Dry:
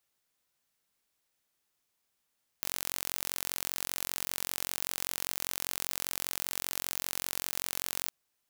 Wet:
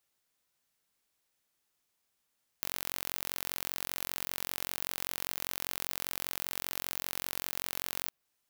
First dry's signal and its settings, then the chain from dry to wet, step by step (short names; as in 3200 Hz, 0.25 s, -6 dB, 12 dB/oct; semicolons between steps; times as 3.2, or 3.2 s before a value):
pulse train 45.1/s, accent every 0, -6.5 dBFS 5.47 s
dynamic EQ 7800 Hz, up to -6 dB, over -54 dBFS, Q 0.86